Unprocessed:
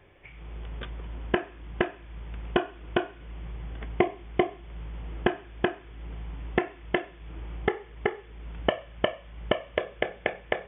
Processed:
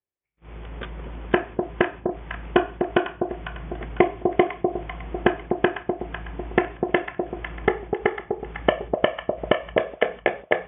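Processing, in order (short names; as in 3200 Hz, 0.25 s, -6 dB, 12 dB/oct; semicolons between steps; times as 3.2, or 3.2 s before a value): LPF 2800 Hz 12 dB/oct; gate -41 dBFS, range -45 dB; low shelf 77 Hz -10 dB; on a send: echo with dull and thin repeats by turns 0.25 s, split 880 Hz, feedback 61%, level -4.5 dB; on the sum: gain +6 dB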